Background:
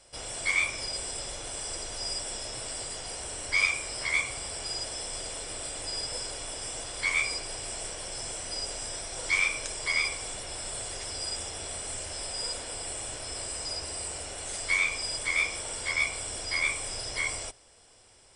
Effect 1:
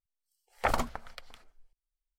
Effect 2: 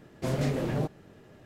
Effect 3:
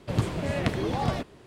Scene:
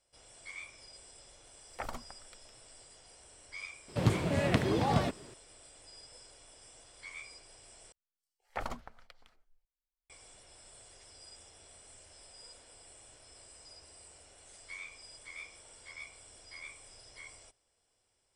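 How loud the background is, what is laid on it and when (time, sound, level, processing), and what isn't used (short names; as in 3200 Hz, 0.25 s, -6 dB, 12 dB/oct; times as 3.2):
background -19.5 dB
1.15 add 1 -12.5 dB
3.88 add 3 -1 dB + HPF 73 Hz
7.92 replace with 1 -10 dB + high shelf 10000 Hz -9 dB
not used: 2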